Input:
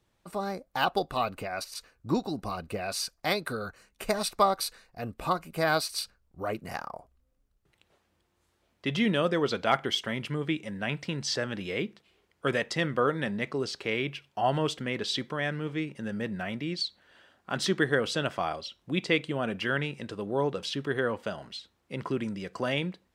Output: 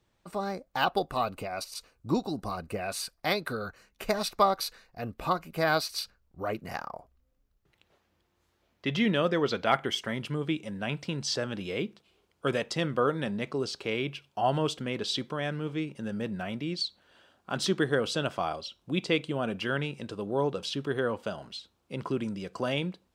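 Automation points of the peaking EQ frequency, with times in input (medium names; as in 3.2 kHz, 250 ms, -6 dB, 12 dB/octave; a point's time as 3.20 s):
peaking EQ -7.5 dB 0.43 oct
0.82 s 11 kHz
1.33 s 1.7 kHz
2.18 s 1.7 kHz
3.37 s 8.9 kHz
9.58 s 8.9 kHz
10.29 s 1.9 kHz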